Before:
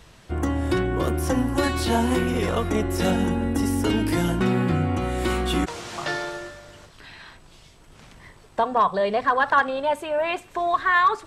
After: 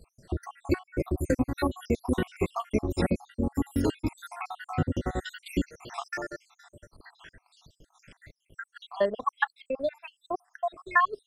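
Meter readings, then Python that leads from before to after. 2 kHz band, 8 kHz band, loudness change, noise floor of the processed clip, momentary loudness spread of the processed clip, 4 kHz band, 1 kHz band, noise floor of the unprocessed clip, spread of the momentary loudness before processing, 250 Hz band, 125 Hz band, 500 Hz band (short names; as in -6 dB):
-7.0 dB, -12.0 dB, -7.5 dB, -78 dBFS, 12 LU, -12.0 dB, -9.5 dB, -51 dBFS, 9 LU, -7.0 dB, -7.5 dB, -7.0 dB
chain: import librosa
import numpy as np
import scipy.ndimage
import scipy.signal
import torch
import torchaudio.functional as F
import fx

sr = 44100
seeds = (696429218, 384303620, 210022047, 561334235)

y = fx.spec_dropout(x, sr, seeds[0], share_pct=74)
y = fx.transient(y, sr, attack_db=3, sustain_db=-9)
y = y * librosa.db_to_amplitude(-3.0)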